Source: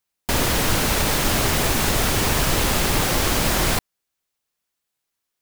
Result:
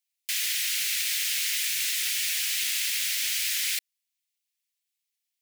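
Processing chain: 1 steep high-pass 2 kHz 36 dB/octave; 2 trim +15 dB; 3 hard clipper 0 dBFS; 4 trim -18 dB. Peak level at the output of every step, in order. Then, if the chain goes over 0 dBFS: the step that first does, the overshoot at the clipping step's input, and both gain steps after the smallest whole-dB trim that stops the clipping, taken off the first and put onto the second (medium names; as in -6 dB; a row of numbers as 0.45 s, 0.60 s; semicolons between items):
-12.0 dBFS, +3.0 dBFS, 0.0 dBFS, -18.0 dBFS; step 2, 3.0 dB; step 2 +12 dB, step 4 -15 dB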